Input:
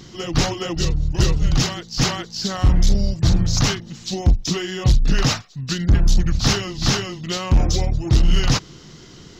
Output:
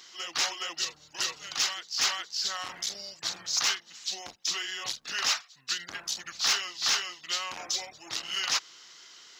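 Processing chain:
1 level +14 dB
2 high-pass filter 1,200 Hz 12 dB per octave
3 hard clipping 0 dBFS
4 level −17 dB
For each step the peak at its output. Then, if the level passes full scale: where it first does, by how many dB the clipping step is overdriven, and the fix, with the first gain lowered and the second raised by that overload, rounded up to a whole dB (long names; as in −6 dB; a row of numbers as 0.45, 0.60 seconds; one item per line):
+5.5, +6.0, 0.0, −17.0 dBFS
step 1, 6.0 dB
step 1 +8 dB, step 4 −11 dB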